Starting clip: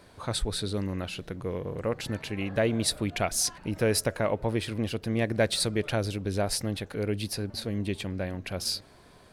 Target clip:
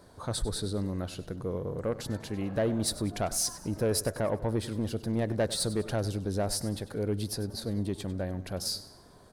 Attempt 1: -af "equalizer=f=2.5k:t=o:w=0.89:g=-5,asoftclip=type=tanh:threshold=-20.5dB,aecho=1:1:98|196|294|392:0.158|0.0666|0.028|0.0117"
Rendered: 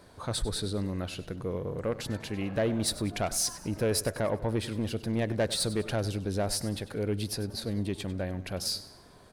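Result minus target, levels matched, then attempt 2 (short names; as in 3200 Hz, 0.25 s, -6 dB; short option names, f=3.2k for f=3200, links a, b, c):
2000 Hz band +3.0 dB
-af "equalizer=f=2.5k:t=o:w=0.89:g=-13,asoftclip=type=tanh:threshold=-20.5dB,aecho=1:1:98|196|294|392:0.158|0.0666|0.028|0.0117"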